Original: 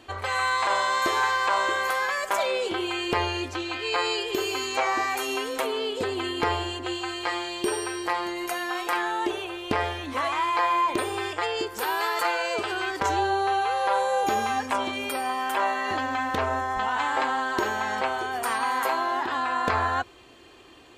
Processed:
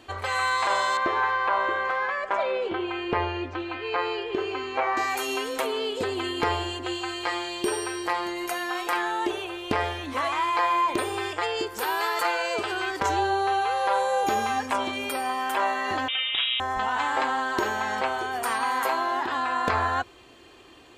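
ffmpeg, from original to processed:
-filter_complex "[0:a]asettb=1/sr,asplit=3[a][b][c];[a]atrim=end=0.974[d];[b]atrim=start=0.97:end=4.97,asetpts=PTS-STARTPTS,afade=t=in:d=0.004:c=qsin,afade=t=out:st=3.996:d=0.004:c=qsin,lowpass=2.2k[e];[c]atrim=start=4.966[f];[d][e]acrossfade=d=0.004:c1=hsin:c2=qsin[g];[g][f]acrossfade=d=0.004:c1=qsin:c2=hsin,asettb=1/sr,asplit=3[h][i][j];[h]atrim=end=16.084[k];[i]atrim=start=16.08:end=16.6,asetpts=PTS-STARTPTS,afade=t=in:d=0.004:c=qsin,afade=t=out:st=0.516:d=0.004:c=qsin,lowpass=f=3.3k:t=q:w=0.5098,lowpass=f=3.3k:t=q:w=0.6013,lowpass=f=3.3k:t=q:w=0.9,lowpass=f=3.3k:t=q:w=2.563,afreqshift=-3900[l];[j]atrim=start=16.596[m];[k][l]acrossfade=d=0.004:c1=hsin:c2=qsin[n];[n][m]acrossfade=d=0.004:c1=qsin:c2=hsin"

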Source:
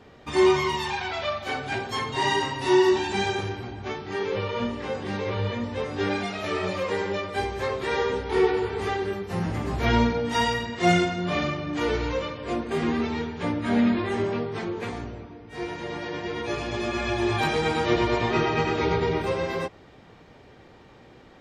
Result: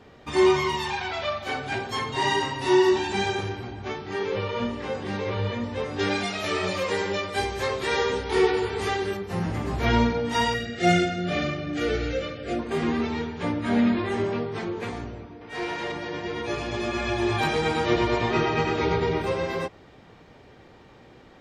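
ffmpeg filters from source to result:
-filter_complex "[0:a]asettb=1/sr,asplit=3[a][b][c];[a]atrim=end=5.994[d];[b]atrim=start=5.99:end=9.17,asetpts=PTS-STARTPTS,afade=t=in:d=0.004:c=qsin,afade=t=out:st=3.176:d=0.004:c=qsin,highshelf=f=3k:g=8.5[e];[c]atrim=start=9.166[f];[d][e]acrossfade=d=0.004:c1=hsin:c2=qsin[g];[g][f]acrossfade=d=0.004:c1=qsin:c2=hsin,asettb=1/sr,asplit=3[h][i][j];[h]atrim=end=10.544[k];[i]atrim=start=10.54:end=12.59,asetpts=PTS-STARTPTS,afade=t=in:d=0.004:c=qsin,afade=t=out:st=2.046:d=0.004:c=qsin,asuperstop=centerf=1000:order=8:qfactor=2.8[l];[j]atrim=start=12.586[m];[k][l]acrossfade=d=0.004:c1=hsin:c2=qsin[n];[n][m]acrossfade=d=0.004:c1=qsin:c2=hsin,asettb=1/sr,asplit=3[o][p][q];[o]atrim=end=15.414[r];[p]atrim=start=15.41:end=15.92,asetpts=PTS-STARTPTS,afade=t=in:d=0.004:c=qsin,afade=t=out:st=0.506:d=0.004:c=qsin,asplit=2[s][t];[t]highpass=f=720:p=1,volume=14dB,asoftclip=type=tanh:threshold=-21.5dB[u];[s][u]amix=inputs=2:normalize=0,lowpass=f=4.8k:p=1,volume=-6dB[v];[q]atrim=start=15.916[w];[r][v]acrossfade=d=0.004:c1=hsin:c2=qsin[x];[x][w]acrossfade=d=0.004:c1=qsin:c2=hsin"

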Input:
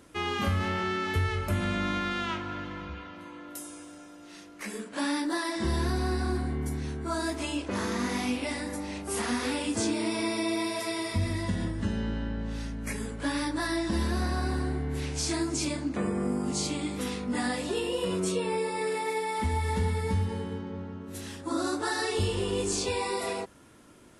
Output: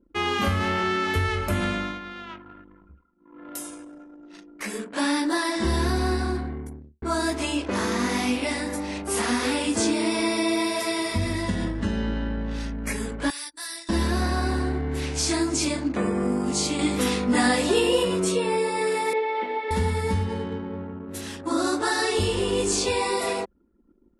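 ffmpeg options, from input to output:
-filter_complex "[0:a]asettb=1/sr,asplit=3[a][b][c];[a]atrim=end=13.304[d];[b]atrim=start=13.3:end=13.89,asetpts=PTS-STARTPTS,afade=t=in:d=0.004:c=qsin,afade=t=out:st=0.586:d=0.004:c=qsin,aderivative[e];[c]atrim=start=13.886[f];[d][e]acrossfade=d=0.004:c1=hsin:c2=qsin[g];[g][f]acrossfade=d=0.004:c1=qsin:c2=hsin,asettb=1/sr,asplit=3[h][i][j];[h]atrim=end=19.134[k];[i]atrim=start=19.13:end=19.71,asetpts=PTS-STARTPTS,afade=t=in:d=0.004:c=qsin,afade=t=out:st=0.576:d=0.004:c=qsin,highpass=f=320:w=0.5412,highpass=f=320:w=1.3066,equalizer=f=520:t=q:w=4:g=6,equalizer=f=1.1k:t=q:w=4:g=-9,equalizer=f=1.7k:t=q:w=4:g=-3,lowpass=f=3.2k:w=0.5412,lowpass=f=3.2k:w=1.3066[l];[j]atrim=start=19.706[m];[k][l]acrossfade=d=0.004:c1=hsin:c2=qsin[n];[n][m]acrossfade=d=0.004:c1=qsin:c2=hsin,asplit=6[o][p][q][r][s][t];[o]atrim=end=1.99,asetpts=PTS-STARTPTS,afade=t=out:st=1.63:d=0.36:silence=0.251189[u];[p]atrim=start=1.99:end=3.18,asetpts=PTS-STARTPTS,volume=-12dB[v];[q]atrim=start=3.18:end=7.02,asetpts=PTS-STARTPTS,afade=t=in:d=0.36:silence=0.251189,afade=t=out:st=2.92:d=0.92[w];[r]atrim=start=7.02:end=16.792,asetpts=PTS-STARTPTS,afade=t=in:d=0.004:c=hsin[x];[s]atrim=start=16.788:end=18.032,asetpts=PTS-STARTPTS,volume=4dB[y];[t]atrim=start=18.028[z];[u][v][w][x]concat=n=4:v=0:a=1[aa];[aa][y]acrossfade=d=0.004:c1=hsin:c2=hsin[ab];[ab][z]acrossfade=d=0.004:c1=hsin:c2=hsin,anlmdn=0.0398,equalizer=f=120:w=1.7:g=-8,volume=6dB"

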